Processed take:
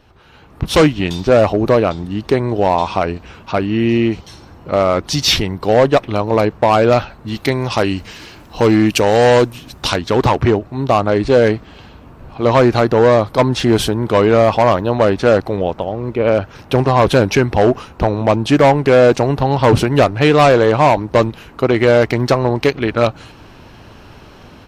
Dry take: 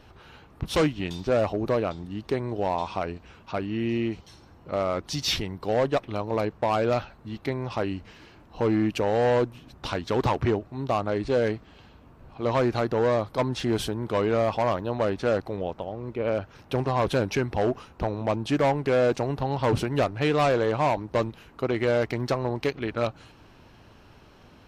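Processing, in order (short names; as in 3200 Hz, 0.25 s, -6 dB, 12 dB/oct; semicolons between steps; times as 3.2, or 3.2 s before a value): 7.28–9.96 high shelf 3300 Hz +11.5 dB; AGC gain up to 12 dB; gain +1 dB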